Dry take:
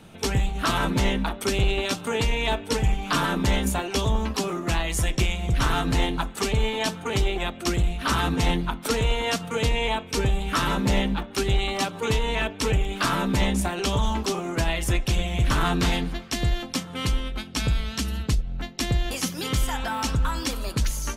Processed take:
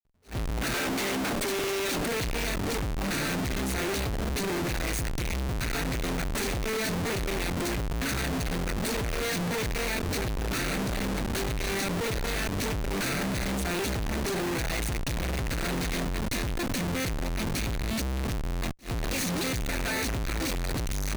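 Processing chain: minimum comb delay 0.48 ms; 0.74–2.06 HPF 260 Hz 24 dB/oct; compressor 5:1, threshold -25 dBFS, peak gain reduction 7.5 dB; Schmitt trigger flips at -40.5 dBFS; attack slew limiter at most 280 dB/s

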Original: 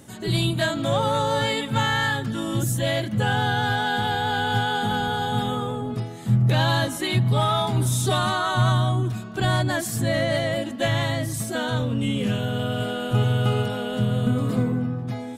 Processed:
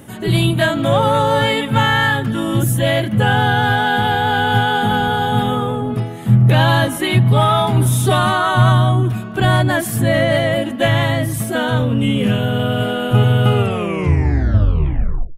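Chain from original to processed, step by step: tape stop at the end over 1.83 s; band shelf 5600 Hz -8.5 dB 1.3 oct; gain +8 dB

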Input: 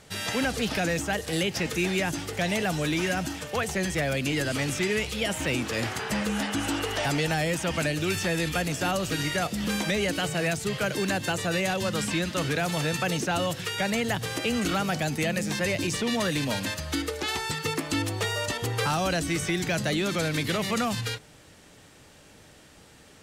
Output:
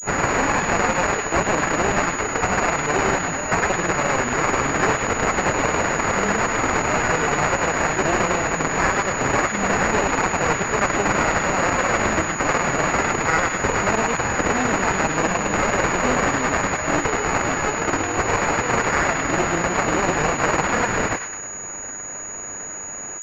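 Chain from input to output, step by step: self-modulated delay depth 0.71 ms; HPF 820 Hz 6 dB/oct; in parallel at +2.5 dB: compressor, threshold -39 dBFS, peak gain reduction 13.5 dB; on the sum: grains 0.1 s, grains 20/s; wow and flutter 100 cents; sample-and-hold 13×; thin delay 0.104 s, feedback 49%, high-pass 1400 Hz, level -5.5 dB; maximiser +19.5 dB; pulse-width modulation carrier 6800 Hz; gain -7.5 dB

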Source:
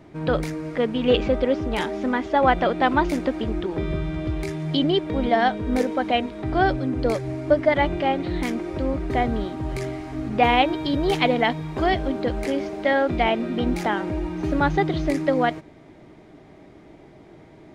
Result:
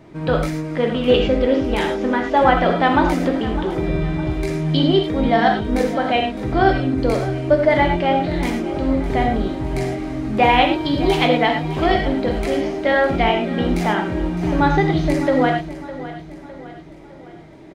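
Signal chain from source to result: on a send: feedback echo 0.608 s, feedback 48%, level -15 dB; on the sum: non-linear reverb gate 0.13 s flat, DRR 2 dB; gain +2 dB

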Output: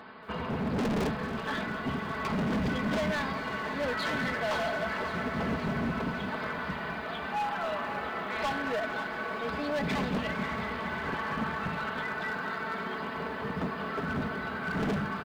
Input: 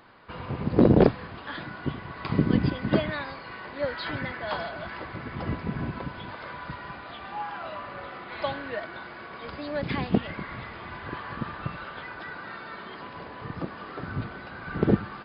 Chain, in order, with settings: HPF 60 Hz 24 dB/oct; high shelf 4000 Hz -9 dB; notches 50/100/150 Hz; comb 4.6 ms, depth 68%; in parallel at -2 dB: compressor, threshold -59 dBFS, peak gain reduction 42 dB; on the sum: hard clip -31 dBFS, distortion 0 dB; on a send: thinning echo 0.543 s, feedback 67%, level -12 dB; on the sum: lo-fi delay 0.227 s, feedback 80%, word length 10-bit, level -14 dB; gain +3 dB

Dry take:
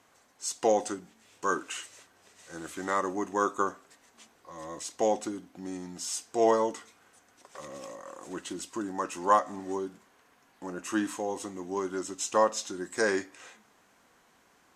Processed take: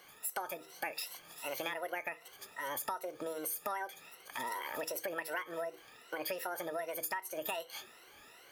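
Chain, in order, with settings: moving spectral ripple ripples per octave 2, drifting +1.5 Hz, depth 15 dB; compressor 20:1, threshold -38 dBFS, peak gain reduction 24.5 dB; speed mistake 45 rpm record played at 78 rpm; de-hum 160.4 Hz, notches 3; gain +3.5 dB

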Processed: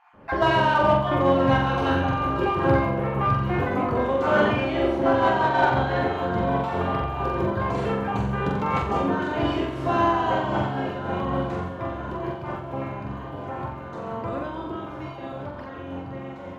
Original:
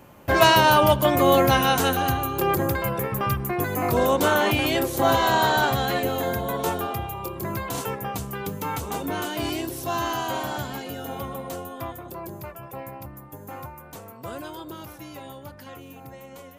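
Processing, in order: random spectral dropouts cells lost 20%; LPF 2100 Hz 12 dB/oct; flutter echo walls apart 7.6 m, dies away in 0.79 s; in parallel at -6 dB: soft clip -20.5 dBFS, distortion -7 dB; on the sum: vocal rider within 4 dB 2 s; on a send: echo with dull and thin repeats by turns 0.484 s, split 920 Hz, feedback 85%, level -13 dB; on the sum: noise-modulated level, depth 65%

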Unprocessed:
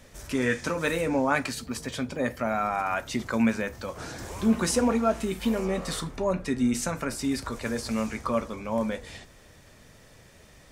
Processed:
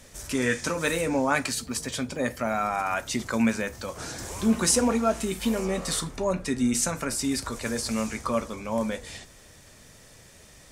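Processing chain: bell 8500 Hz +8 dB 1.8 oct

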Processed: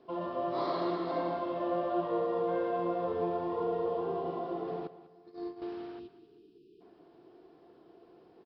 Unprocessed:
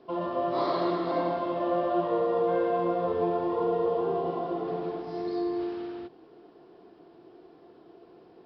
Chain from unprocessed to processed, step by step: 4.87–5.62 gate -28 dBFS, range -25 dB; 6–6.81 spectral delete 460–2400 Hz; on a send: feedback echo 0.196 s, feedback 36%, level -15.5 dB; on the sum: gain -5 dB

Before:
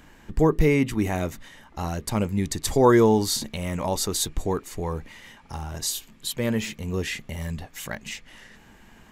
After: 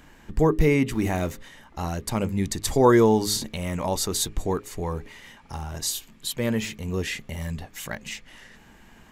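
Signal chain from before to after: 0.92–1.32 zero-crossing step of -39.5 dBFS; de-hum 104.1 Hz, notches 5

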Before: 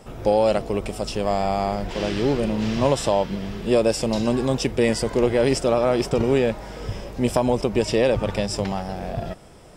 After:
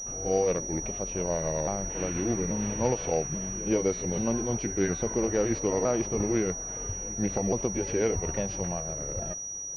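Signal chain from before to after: repeated pitch sweeps -4.5 st, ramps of 0.836 s; reverse echo 0.133 s -17 dB; pulse-width modulation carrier 5800 Hz; gain -6.5 dB

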